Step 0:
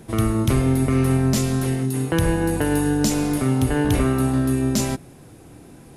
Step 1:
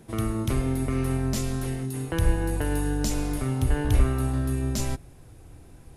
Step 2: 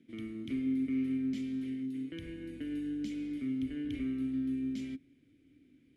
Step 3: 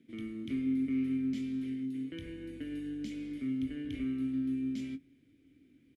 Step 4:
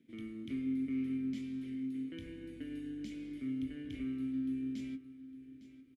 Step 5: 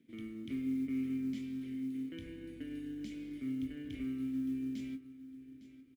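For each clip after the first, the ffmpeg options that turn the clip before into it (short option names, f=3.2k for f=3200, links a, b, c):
-af "asubboost=boost=7.5:cutoff=74,volume=-7dB"
-filter_complex "[0:a]asplit=3[a][b][c];[a]bandpass=f=270:t=q:w=8,volume=0dB[d];[b]bandpass=f=2.29k:t=q:w=8,volume=-6dB[e];[c]bandpass=f=3.01k:t=q:w=8,volume=-9dB[f];[d][e][f]amix=inputs=3:normalize=0"
-filter_complex "[0:a]asplit=2[a][b];[b]adelay=22,volume=-11.5dB[c];[a][c]amix=inputs=2:normalize=0"
-af "aecho=1:1:857|1714|2571:0.168|0.0453|0.0122,volume=-4dB"
-af "acrusher=bits=9:mode=log:mix=0:aa=0.000001"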